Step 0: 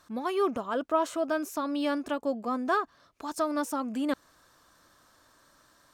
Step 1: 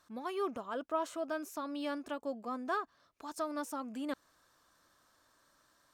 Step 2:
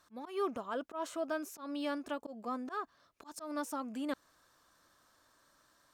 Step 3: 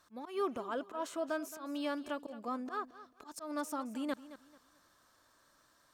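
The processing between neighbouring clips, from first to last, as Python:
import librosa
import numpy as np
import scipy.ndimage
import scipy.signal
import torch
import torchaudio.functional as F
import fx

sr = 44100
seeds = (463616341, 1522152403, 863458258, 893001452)

y1 = fx.low_shelf(x, sr, hz=350.0, db=-3.0)
y1 = y1 * librosa.db_to_amplitude(-7.5)
y2 = fx.auto_swell(y1, sr, attack_ms=129.0)
y2 = y2 * librosa.db_to_amplitude(1.0)
y3 = fx.echo_feedback(y2, sr, ms=220, feedback_pct=28, wet_db=-15.5)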